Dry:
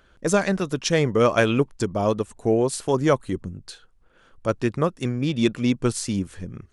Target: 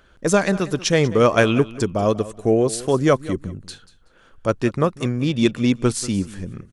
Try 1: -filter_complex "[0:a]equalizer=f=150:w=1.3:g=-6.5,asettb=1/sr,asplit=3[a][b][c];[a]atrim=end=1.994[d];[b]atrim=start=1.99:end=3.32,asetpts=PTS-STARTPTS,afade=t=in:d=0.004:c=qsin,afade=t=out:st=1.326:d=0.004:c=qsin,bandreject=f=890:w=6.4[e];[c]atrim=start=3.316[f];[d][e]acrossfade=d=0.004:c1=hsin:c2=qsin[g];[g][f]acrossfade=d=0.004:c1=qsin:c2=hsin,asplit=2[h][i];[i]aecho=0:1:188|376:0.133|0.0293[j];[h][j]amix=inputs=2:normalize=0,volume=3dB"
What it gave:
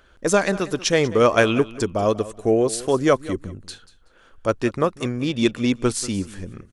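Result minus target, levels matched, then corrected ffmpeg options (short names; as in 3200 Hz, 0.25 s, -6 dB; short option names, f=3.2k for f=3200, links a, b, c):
125 Hz band -4.0 dB
-filter_complex "[0:a]asettb=1/sr,asplit=3[a][b][c];[a]atrim=end=1.994[d];[b]atrim=start=1.99:end=3.32,asetpts=PTS-STARTPTS,afade=t=in:d=0.004:c=qsin,afade=t=out:st=1.326:d=0.004:c=qsin,bandreject=f=890:w=6.4[e];[c]atrim=start=3.316[f];[d][e]acrossfade=d=0.004:c1=hsin:c2=qsin[g];[g][f]acrossfade=d=0.004:c1=qsin:c2=hsin,asplit=2[h][i];[i]aecho=0:1:188|376:0.133|0.0293[j];[h][j]amix=inputs=2:normalize=0,volume=3dB"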